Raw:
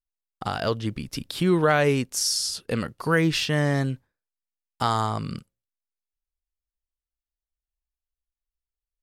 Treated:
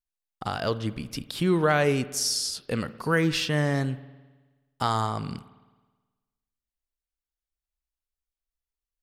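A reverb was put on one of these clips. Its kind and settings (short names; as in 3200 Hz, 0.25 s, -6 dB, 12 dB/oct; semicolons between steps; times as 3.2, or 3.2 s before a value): spring tank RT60 1.3 s, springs 53 ms, chirp 30 ms, DRR 15.5 dB; gain -2 dB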